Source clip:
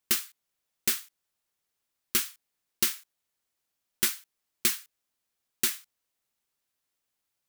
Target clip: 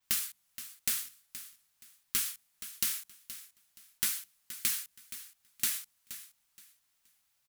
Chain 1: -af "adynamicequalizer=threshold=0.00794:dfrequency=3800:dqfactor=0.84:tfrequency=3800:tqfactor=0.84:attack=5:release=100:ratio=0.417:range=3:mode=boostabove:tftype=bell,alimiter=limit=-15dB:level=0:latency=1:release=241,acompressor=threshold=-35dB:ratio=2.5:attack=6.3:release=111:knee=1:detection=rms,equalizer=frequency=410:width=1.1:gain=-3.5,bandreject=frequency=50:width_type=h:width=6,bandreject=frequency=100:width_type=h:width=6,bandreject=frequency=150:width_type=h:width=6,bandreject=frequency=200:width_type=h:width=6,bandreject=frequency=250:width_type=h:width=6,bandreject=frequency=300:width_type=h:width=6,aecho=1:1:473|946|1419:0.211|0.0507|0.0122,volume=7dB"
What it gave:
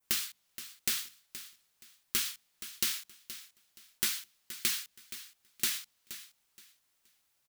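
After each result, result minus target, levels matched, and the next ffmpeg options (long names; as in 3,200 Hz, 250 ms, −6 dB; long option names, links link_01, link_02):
500 Hz band +7.5 dB; 4,000 Hz band +4.0 dB
-af "adynamicequalizer=threshold=0.00794:dfrequency=3800:dqfactor=0.84:tfrequency=3800:tqfactor=0.84:attack=5:release=100:ratio=0.417:range=3:mode=boostabove:tftype=bell,alimiter=limit=-15dB:level=0:latency=1:release=241,acompressor=threshold=-35dB:ratio=2.5:attack=6.3:release=111:knee=1:detection=rms,equalizer=frequency=410:width=1.1:gain=-11,bandreject=frequency=50:width_type=h:width=6,bandreject=frequency=100:width_type=h:width=6,bandreject=frequency=150:width_type=h:width=6,bandreject=frequency=200:width_type=h:width=6,bandreject=frequency=250:width_type=h:width=6,bandreject=frequency=300:width_type=h:width=6,aecho=1:1:473|946|1419:0.211|0.0507|0.0122,volume=7dB"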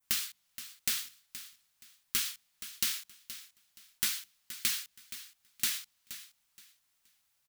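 4,000 Hz band +4.0 dB
-af "adynamicequalizer=threshold=0.00794:dfrequency=11000:dqfactor=0.84:tfrequency=11000:tqfactor=0.84:attack=5:release=100:ratio=0.417:range=3:mode=boostabove:tftype=bell,alimiter=limit=-15dB:level=0:latency=1:release=241,acompressor=threshold=-35dB:ratio=2.5:attack=6.3:release=111:knee=1:detection=rms,equalizer=frequency=410:width=1.1:gain=-11,bandreject=frequency=50:width_type=h:width=6,bandreject=frequency=100:width_type=h:width=6,bandreject=frequency=150:width_type=h:width=6,bandreject=frequency=200:width_type=h:width=6,bandreject=frequency=250:width_type=h:width=6,bandreject=frequency=300:width_type=h:width=6,aecho=1:1:473|946|1419:0.211|0.0507|0.0122,volume=7dB"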